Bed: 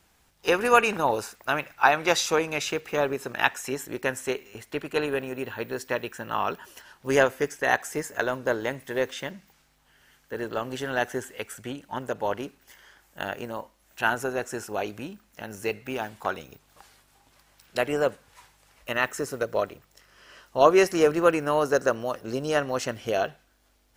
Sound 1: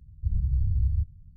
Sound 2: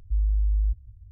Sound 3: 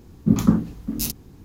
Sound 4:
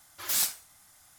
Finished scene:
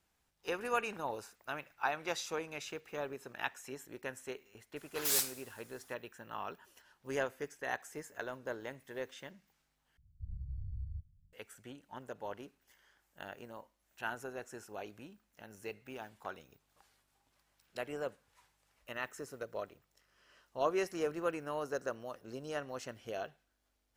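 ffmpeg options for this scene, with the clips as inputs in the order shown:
ffmpeg -i bed.wav -i cue0.wav -i cue1.wav -i cue2.wav -i cue3.wav -filter_complex "[0:a]volume=-15dB[link_01];[4:a]aecho=1:1:103|206|309|412:0.0891|0.0455|0.0232|0.0118[link_02];[link_01]asplit=2[link_03][link_04];[link_03]atrim=end=9.974[link_05];[1:a]atrim=end=1.36,asetpts=PTS-STARTPTS,volume=-17.5dB[link_06];[link_04]atrim=start=11.326[link_07];[link_02]atrim=end=1.18,asetpts=PTS-STARTPTS,volume=-4.5dB,afade=type=in:duration=0.004:curve=hsin,afade=type=out:start_time=1.176:duration=0.004:curve=hsin,adelay=4760[link_08];[link_05][link_06]acrossfade=duration=0.004:curve1=hsin:curve2=hsin[link_09];[link_09][link_07]acrossfade=duration=0.004:curve1=hsin:curve2=hsin[link_10];[link_10][link_08]amix=inputs=2:normalize=0" out.wav

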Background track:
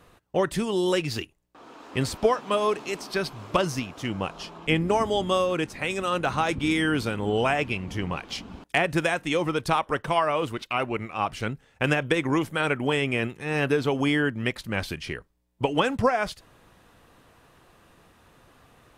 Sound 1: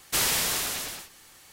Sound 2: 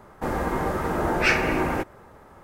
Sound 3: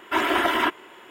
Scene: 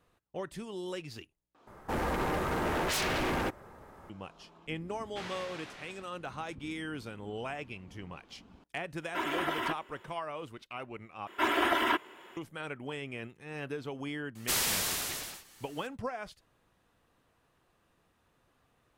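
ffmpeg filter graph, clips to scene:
ffmpeg -i bed.wav -i cue0.wav -i cue1.wav -i cue2.wav -filter_complex "[1:a]asplit=2[link_01][link_02];[3:a]asplit=2[link_03][link_04];[0:a]volume=-15dB[link_05];[2:a]aeval=exprs='0.075*(abs(mod(val(0)/0.075+3,4)-2)-1)':channel_layout=same[link_06];[link_01]highpass=130,lowpass=2600[link_07];[link_05]asplit=3[link_08][link_09][link_10];[link_08]atrim=end=1.674[link_11];[link_06]atrim=end=2.43,asetpts=PTS-STARTPTS,volume=-3.5dB[link_12];[link_09]atrim=start=4.096:end=11.274[link_13];[link_04]atrim=end=1.1,asetpts=PTS-STARTPTS,volume=-6dB[link_14];[link_10]atrim=start=12.366[link_15];[link_07]atrim=end=1.52,asetpts=PTS-STARTPTS,volume=-12dB,afade=type=in:duration=0.004:curve=hsin,afade=type=out:start_time=1.516:duration=0.004:curve=hsin,adelay=5030[link_16];[link_03]atrim=end=1.1,asetpts=PTS-STARTPTS,volume=-11.5dB,afade=type=in:duration=0.004:curve=hsin,afade=type=out:start_time=1.096:duration=0.004:curve=hsin,adelay=9030[link_17];[link_02]atrim=end=1.52,asetpts=PTS-STARTPTS,volume=-5dB,afade=type=in:duration=0.004:curve=hsin,afade=type=out:start_time=1.516:duration=0.004:curve=hsin,adelay=14350[link_18];[link_11][link_12]acrossfade=duration=0.004:curve1=hsin:curve2=hsin[link_19];[link_19][link_13]acrossfade=duration=0.004:curve1=hsin:curve2=hsin[link_20];[link_20][link_14]acrossfade=duration=0.004:curve1=hsin:curve2=hsin[link_21];[link_21][link_15]acrossfade=duration=0.004:curve1=hsin:curve2=hsin[link_22];[link_22][link_16][link_17][link_18]amix=inputs=4:normalize=0" out.wav

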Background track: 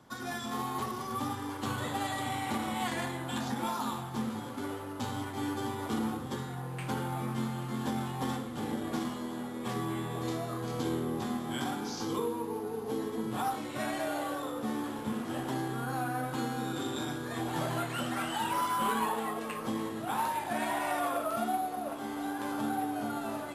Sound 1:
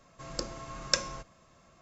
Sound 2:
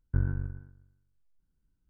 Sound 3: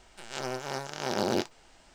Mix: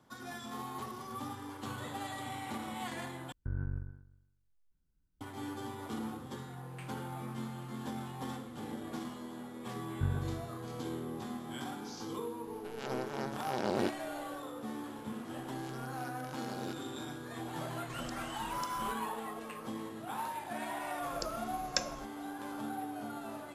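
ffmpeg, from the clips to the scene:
ffmpeg -i bed.wav -i cue0.wav -i cue1.wav -i cue2.wav -filter_complex "[2:a]asplit=2[link_01][link_02];[3:a]asplit=2[link_03][link_04];[1:a]asplit=2[link_05][link_06];[0:a]volume=-7dB[link_07];[link_01]alimiter=level_in=1.5dB:limit=-24dB:level=0:latency=1:release=11,volume=-1.5dB[link_08];[link_02]highpass=75[link_09];[link_03]lowpass=frequency=2300:poles=1[link_10];[link_05]acompressor=threshold=-41dB:ratio=6:attack=3.2:release=140:knee=1:detection=peak[link_11];[link_07]asplit=2[link_12][link_13];[link_12]atrim=end=3.324[link_14];[link_08]atrim=end=1.89,asetpts=PTS-STARTPTS,volume=-3dB[link_15];[link_13]atrim=start=5.206[link_16];[link_09]atrim=end=1.89,asetpts=PTS-STARTPTS,volume=-3dB,afade=type=in:duration=0.004:curve=hsin,afade=type=out:start_time=1.886:duration=0.004:curve=hsin,adelay=9870[link_17];[link_10]atrim=end=1.94,asetpts=PTS-STARTPTS,volume=-4dB,afade=type=in:duration=0.004:curve=hsin,afade=type=out:start_time=1.936:duration=0.004:curve=hsin,adelay=12470[link_18];[link_04]atrim=end=1.94,asetpts=PTS-STARTPTS,volume=-16.5dB,afade=type=in:duration=0.004:curve=hsin,afade=type=out:start_time=1.936:duration=0.004:curve=hsin,adelay=15310[link_19];[link_11]atrim=end=1.81,asetpts=PTS-STARTPTS,volume=-2dB,afade=type=in:duration=0.004:curve=hsin,afade=type=out:start_time=1.806:duration=0.004:curve=hsin,adelay=17700[link_20];[link_06]atrim=end=1.81,asetpts=PTS-STARTPTS,volume=-5.5dB,afade=type=in:duration=0.004:curve=hsin,afade=type=out:start_time=1.806:duration=0.004:curve=hsin,adelay=20830[link_21];[link_14][link_15]acrossfade=duration=0.004:curve1=hsin:curve2=hsin[link_22];[link_22][link_16]acrossfade=duration=0.004:curve1=hsin:curve2=hsin[link_23];[link_23][link_17][link_18][link_19][link_20][link_21]amix=inputs=6:normalize=0" out.wav

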